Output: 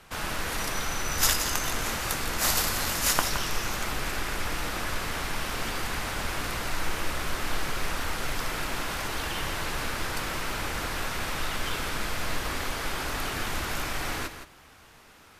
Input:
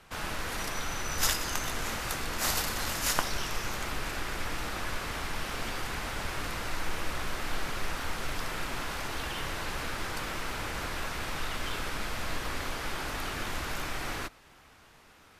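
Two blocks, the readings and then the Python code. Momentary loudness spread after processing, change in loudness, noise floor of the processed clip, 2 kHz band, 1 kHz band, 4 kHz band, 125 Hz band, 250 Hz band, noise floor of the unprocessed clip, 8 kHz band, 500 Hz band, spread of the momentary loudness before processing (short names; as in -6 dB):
7 LU, +4.0 dB, -53 dBFS, +3.5 dB, +3.5 dB, +4.0 dB, +3.5 dB, +3.5 dB, -57 dBFS, +5.0 dB, +3.5 dB, 6 LU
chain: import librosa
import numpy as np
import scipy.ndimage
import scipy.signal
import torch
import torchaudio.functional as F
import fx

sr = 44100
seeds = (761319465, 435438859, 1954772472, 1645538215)

y = fx.high_shelf(x, sr, hz=7900.0, db=4.0)
y = y + 10.0 ** (-10.0 / 20.0) * np.pad(y, (int(168 * sr / 1000.0), 0))[:len(y)]
y = F.gain(torch.from_numpy(y), 3.0).numpy()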